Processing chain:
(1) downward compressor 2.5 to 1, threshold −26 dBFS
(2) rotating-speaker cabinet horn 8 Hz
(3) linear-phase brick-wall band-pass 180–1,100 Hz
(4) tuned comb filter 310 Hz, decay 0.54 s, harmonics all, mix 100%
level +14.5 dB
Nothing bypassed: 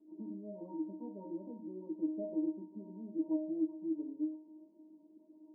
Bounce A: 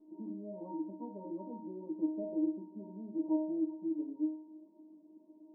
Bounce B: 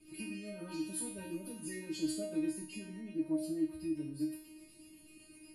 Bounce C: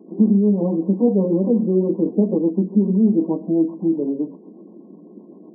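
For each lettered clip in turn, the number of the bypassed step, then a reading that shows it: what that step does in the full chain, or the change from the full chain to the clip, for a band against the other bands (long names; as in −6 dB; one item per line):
2, change in integrated loudness +1.5 LU
3, change in momentary loudness spread +4 LU
4, change in momentary loudness spread −11 LU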